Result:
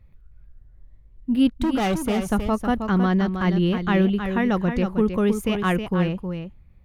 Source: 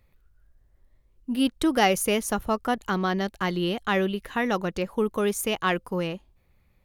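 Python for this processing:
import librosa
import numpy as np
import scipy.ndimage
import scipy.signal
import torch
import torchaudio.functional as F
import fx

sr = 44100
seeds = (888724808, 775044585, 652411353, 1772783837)

y = fx.bass_treble(x, sr, bass_db=12, treble_db=-9)
y = fx.overload_stage(y, sr, gain_db=19.5, at=(1.61, 2.23))
y = y + 10.0 ** (-7.5 / 20.0) * np.pad(y, (int(316 * sr / 1000.0), 0))[:len(y)]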